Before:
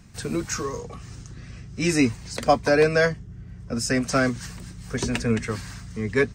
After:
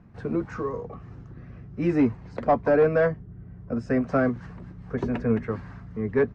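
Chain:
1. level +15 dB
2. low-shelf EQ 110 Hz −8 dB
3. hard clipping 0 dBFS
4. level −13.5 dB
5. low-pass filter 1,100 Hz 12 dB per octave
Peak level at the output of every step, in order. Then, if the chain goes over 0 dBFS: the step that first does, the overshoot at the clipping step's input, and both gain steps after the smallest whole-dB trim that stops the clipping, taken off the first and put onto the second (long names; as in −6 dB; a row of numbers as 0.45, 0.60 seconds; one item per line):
+10.5, +10.0, 0.0, −13.5, −13.0 dBFS
step 1, 10.0 dB
step 1 +5 dB, step 4 −3.5 dB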